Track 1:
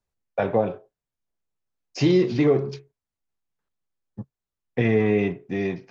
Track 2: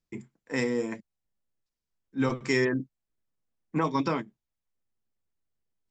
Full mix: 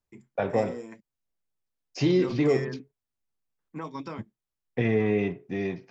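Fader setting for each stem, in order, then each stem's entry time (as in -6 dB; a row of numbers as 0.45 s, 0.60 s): -4.0 dB, -10.0 dB; 0.00 s, 0.00 s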